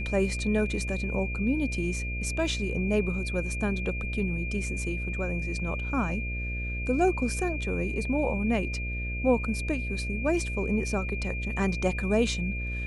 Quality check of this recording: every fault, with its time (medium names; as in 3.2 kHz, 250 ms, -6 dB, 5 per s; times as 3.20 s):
buzz 60 Hz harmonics 11 -33 dBFS
whine 2.4 kHz -35 dBFS